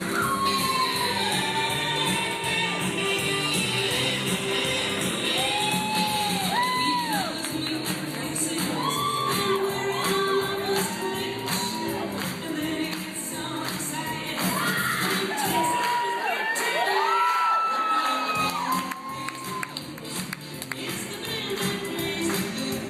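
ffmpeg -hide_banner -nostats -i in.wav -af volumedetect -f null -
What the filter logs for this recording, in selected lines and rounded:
mean_volume: -26.4 dB
max_volume: -13.1 dB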